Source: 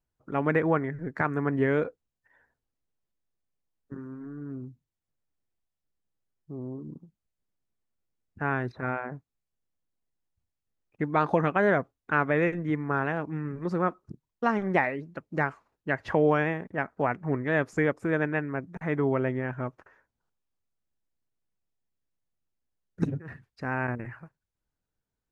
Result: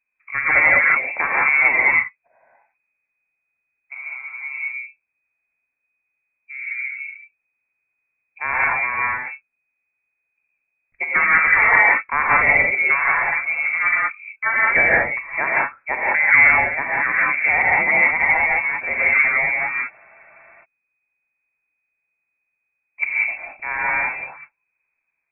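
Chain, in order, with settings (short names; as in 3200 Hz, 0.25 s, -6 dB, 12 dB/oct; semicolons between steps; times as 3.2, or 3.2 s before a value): inverted band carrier 2500 Hz; non-linear reverb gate 0.22 s rising, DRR -5 dB; spectral freeze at 19.93, 0.70 s; gain +3.5 dB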